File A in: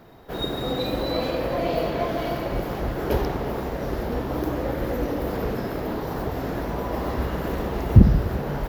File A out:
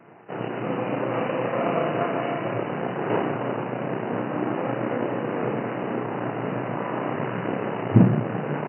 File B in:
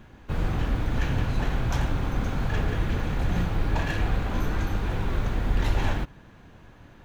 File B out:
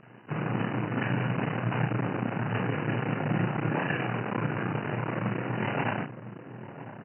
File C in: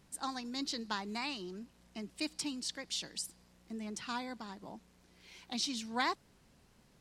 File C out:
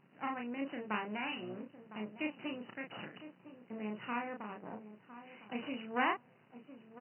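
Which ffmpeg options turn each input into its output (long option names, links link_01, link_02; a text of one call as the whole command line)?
ffmpeg -i in.wav -filter_complex "[0:a]asplit=2[link_01][link_02];[link_02]adelay=1007,lowpass=frequency=850:poles=1,volume=-12dB,asplit=2[link_03][link_04];[link_04]adelay=1007,lowpass=frequency=850:poles=1,volume=0.24,asplit=2[link_05][link_06];[link_06]adelay=1007,lowpass=frequency=850:poles=1,volume=0.24[link_07];[link_01][link_03][link_05][link_07]amix=inputs=4:normalize=0,aresample=8000,aeval=exprs='max(val(0),0)':channel_layout=same,aresample=44100,afftfilt=real='re*between(b*sr/4096,100,3000)':imag='im*between(b*sr/4096,100,3000)':win_size=4096:overlap=0.75,asplit=2[link_08][link_09];[link_09]adelay=33,volume=-4dB[link_10];[link_08][link_10]amix=inputs=2:normalize=0,volume=3.5dB" out.wav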